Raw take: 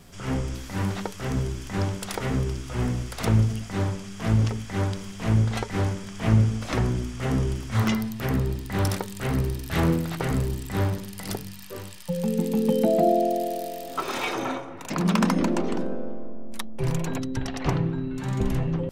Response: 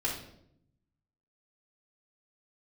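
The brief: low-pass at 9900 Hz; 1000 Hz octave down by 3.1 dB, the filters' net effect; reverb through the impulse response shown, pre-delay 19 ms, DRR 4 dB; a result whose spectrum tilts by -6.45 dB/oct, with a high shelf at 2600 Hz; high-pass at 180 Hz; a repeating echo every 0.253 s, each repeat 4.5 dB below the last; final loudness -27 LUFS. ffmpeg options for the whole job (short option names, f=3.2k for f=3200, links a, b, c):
-filter_complex "[0:a]highpass=180,lowpass=9.9k,equalizer=f=1k:t=o:g=-3.5,highshelf=f=2.6k:g=-7.5,aecho=1:1:253|506|759|1012|1265|1518|1771|2024|2277:0.596|0.357|0.214|0.129|0.0772|0.0463|0.0278|0.0167|0.01,asplit=2[a][b];[1:a]atrim=start_sample=2205,adelay=19[c];[b][c]afir=irnorm=-1:irlink=0,volume=-10dB[d];[a][d]amix=inputs=2:normalize=0,volume=0.5dB"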